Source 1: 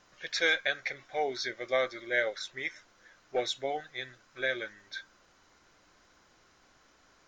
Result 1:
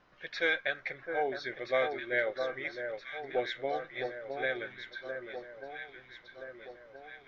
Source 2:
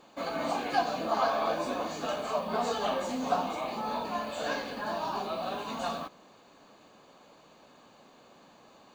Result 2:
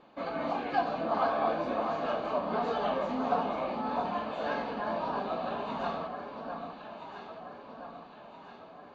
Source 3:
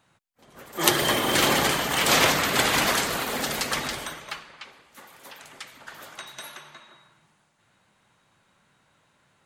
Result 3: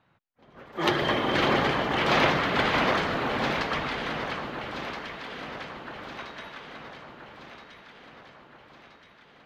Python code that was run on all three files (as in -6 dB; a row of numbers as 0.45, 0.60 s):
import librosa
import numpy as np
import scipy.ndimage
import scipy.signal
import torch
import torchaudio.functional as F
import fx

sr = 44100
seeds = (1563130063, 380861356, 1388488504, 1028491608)

y = fx.air_absorb(x, sr, metres=280.0)
y = fx.echo_alternate(y, sr, ms=662, hz=1500.0, feedback_pct=71, wet_db=-5.5)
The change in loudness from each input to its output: -2.0, -0.5, -4.0 LU